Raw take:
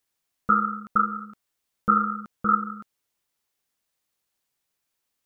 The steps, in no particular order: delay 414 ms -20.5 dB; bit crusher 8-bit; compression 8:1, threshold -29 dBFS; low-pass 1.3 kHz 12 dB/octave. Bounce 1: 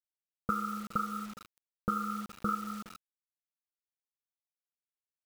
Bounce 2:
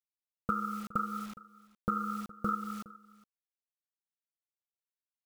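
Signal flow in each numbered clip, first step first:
low-pass > compression > delay > bit crusher; low-pass > bit crusher > compression > delay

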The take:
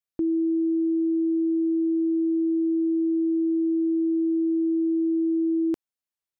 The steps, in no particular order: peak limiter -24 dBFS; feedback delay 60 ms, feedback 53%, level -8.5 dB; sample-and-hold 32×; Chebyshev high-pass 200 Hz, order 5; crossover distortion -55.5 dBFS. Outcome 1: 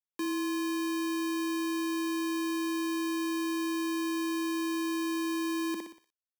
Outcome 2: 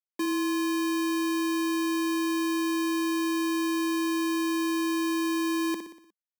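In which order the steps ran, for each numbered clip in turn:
feedback delay > sample-and-hold > Chebyshev high-pass > crossover distortion > peak limiter; crossover distortion > feedback delay > peak limiter > Chebyshev high-pass > sample-and-hold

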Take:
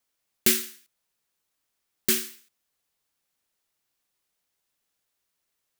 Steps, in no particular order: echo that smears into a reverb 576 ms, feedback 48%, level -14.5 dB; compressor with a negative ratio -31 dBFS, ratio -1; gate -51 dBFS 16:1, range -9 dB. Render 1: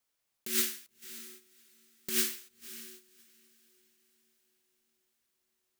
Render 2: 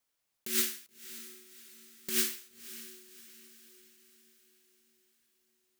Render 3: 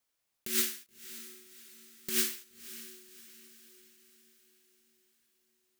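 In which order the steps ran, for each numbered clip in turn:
compressor with a negative ratio > echo that smears into a reverb > gate; compressor with a negative ratio > gate > echo that smears into a reverb; gate > compressor with a negative ratio > echo that smears into a reverb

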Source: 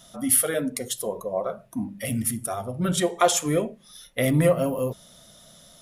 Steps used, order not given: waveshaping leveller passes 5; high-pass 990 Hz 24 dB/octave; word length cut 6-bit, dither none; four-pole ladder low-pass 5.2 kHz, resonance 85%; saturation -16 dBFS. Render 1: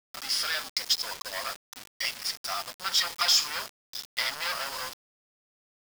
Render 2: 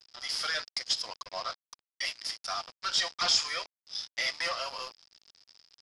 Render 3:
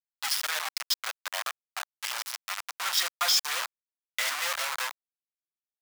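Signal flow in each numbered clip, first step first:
waveshaping leveller > four-pole ladder low-pass > saturation > high-pass > word length cut; high-pass > waveshaping leveller > saturation > word length cut > four-pole ladder low-pass; four-pole ladder low-pass > word length cut > waveshaping leveller > high-pass > saturation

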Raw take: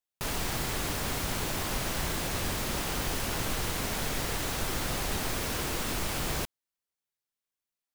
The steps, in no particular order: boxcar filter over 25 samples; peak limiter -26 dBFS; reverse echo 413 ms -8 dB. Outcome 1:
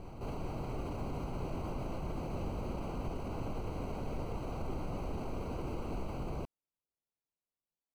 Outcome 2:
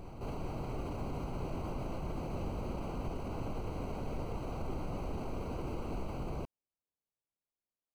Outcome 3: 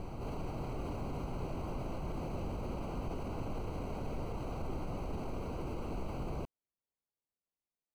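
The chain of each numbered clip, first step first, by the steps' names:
peak limiter > reverse echo > boxcar filter; peak limiter > boxcar filter > reverse echo; reverse echo > peak limiter > boxcar filter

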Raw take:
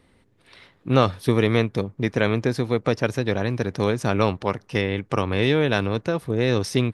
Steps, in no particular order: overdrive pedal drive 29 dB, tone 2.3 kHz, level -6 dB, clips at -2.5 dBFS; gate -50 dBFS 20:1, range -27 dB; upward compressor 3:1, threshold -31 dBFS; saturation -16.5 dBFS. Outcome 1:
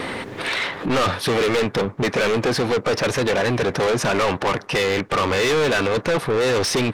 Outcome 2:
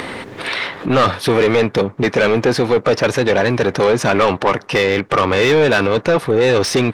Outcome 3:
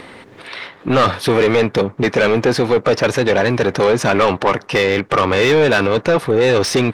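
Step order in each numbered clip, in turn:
upward compressor > gate > overdrive pedal > saturation; saturation > upward compressor > overdrive pedal > gate; saturation > overdrive pedal > upward compressor > gate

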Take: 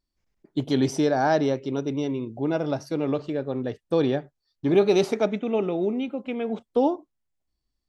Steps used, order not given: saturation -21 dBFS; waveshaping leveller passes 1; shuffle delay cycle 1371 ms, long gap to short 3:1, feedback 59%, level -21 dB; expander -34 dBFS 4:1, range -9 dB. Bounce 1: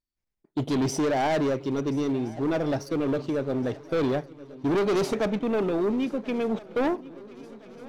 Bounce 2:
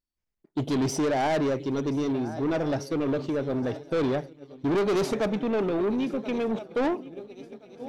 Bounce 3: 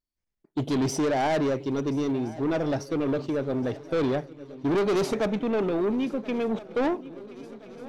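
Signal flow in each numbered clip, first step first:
waveshaping leveller > expander > saturation > shuffle delay; shuffle delay > saturation > waveshaping leveller > expander; saturation > expander > shuffle delay > waveshaping leveller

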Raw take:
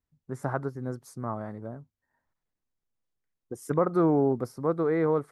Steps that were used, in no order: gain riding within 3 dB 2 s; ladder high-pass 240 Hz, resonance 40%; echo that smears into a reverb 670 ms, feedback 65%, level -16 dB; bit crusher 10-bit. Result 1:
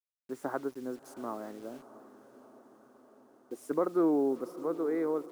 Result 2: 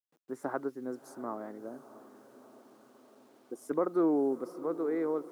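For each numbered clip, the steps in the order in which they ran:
ladder high-pass > bit crusher > gain riding > echo that smears into a reverb; gain riding > echo that smears into a reverb > bit crusher > ladder high-pass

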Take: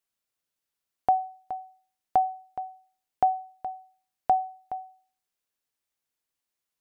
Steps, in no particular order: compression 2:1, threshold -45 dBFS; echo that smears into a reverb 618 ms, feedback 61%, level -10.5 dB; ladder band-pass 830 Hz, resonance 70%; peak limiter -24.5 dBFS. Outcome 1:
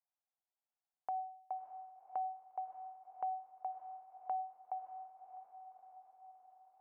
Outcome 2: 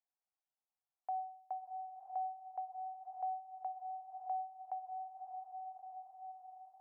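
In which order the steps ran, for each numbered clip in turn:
ladder band-pass > peak limiter > compression > echo that smears into a reverb; peak limiter > echo that smears into a reverb > compression > ladder band-pass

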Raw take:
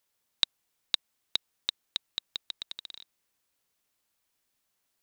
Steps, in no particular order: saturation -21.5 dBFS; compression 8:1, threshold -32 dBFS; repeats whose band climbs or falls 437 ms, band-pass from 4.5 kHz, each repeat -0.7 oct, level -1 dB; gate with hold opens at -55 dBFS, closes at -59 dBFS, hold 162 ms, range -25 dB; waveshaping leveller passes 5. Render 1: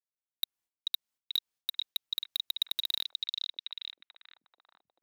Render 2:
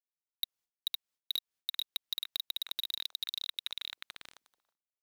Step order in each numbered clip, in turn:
gate with hold > compression > waveshaping leveller > saturation > repeats whose band climbs or falls; saturation > repeats whose band climbs or falls > gate with hold > waveshaping leveller > compression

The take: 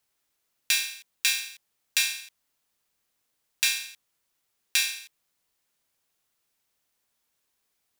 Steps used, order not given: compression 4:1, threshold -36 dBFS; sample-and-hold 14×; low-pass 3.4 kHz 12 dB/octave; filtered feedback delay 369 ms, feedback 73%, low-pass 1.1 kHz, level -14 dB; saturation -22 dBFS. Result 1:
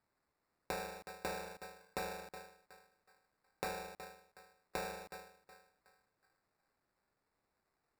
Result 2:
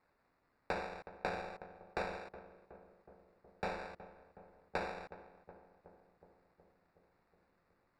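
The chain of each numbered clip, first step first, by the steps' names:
filtered feedback delay > saturation > compression > low-pass > sample-and-hold; compression > sample-and-hold > filtered feedback delay > saturation > low-pass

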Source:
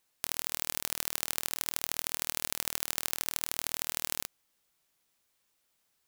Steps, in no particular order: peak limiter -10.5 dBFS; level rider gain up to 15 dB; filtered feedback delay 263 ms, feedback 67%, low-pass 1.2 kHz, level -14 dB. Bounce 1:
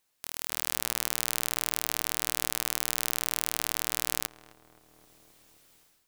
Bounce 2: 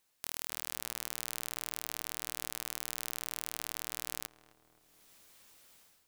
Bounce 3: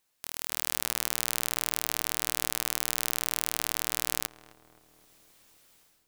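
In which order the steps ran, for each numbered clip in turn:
peak limiter > filtered feedback delay > level rider; level rider > peak limiter > filtered feedback delay; peak limiter > level rider > filtered feedback delay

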